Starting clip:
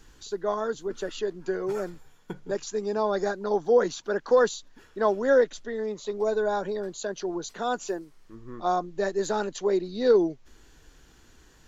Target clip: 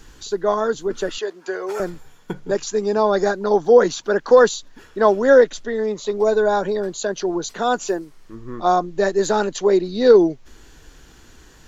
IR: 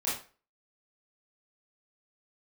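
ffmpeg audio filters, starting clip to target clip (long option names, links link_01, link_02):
-filter_complex "[0:a]asettb=1/sr,asplit=3[link_01][link_02][link_03];[link_01]atrim=end=1.184[link_04];[link_02]atrim=start=1.18:end=1.8,asetpts=PTS-STARTPTS,afade=type=in:duration=0.004:curve=qsin,afade=type=out:start_time=0.616:duration=0.004:curve=qsin,highpass=530[link_05];[link_03]atrim=start=1.796[link_06];[link_04][link_05]acrossfade=duration=0.004:curve1=hsin:curve2=qsin[link_07];[link_07][link_06]acrossfade=duration=0.004:curve1=qsin:curve2=hsin,volume=8.5dB"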